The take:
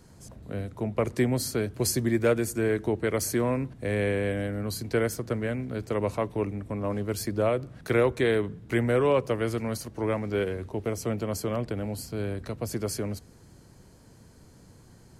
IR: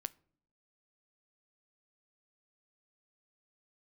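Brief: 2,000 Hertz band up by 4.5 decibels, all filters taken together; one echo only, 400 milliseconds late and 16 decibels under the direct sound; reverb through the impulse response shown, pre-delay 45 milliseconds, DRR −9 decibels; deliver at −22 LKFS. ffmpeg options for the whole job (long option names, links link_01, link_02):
-filter_complex "[0:a]equalizer=frequency=2000:width_type=o:gain=5.5,aecho=1:1:400:0.158,asplit=2[link_01][link_02];[1:a]atrim=start_sample=2205,adelay=45[link_03];[link_02][link_03]afir=irnorm=-1:irlink=0,volume=11.5dB[link_04];[link_01][link_04]amix=inputs=2:normalize=0,volume=-4dB"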